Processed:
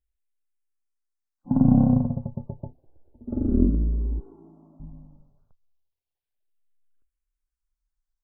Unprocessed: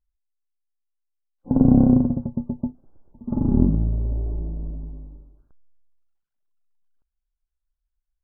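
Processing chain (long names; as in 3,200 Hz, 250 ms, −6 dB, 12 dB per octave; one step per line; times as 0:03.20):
0:04.19–0:04.80: high-pass filter 430 Hz 12 dB per octave
frequency shifter mixed with the dry sound −0.3 Hz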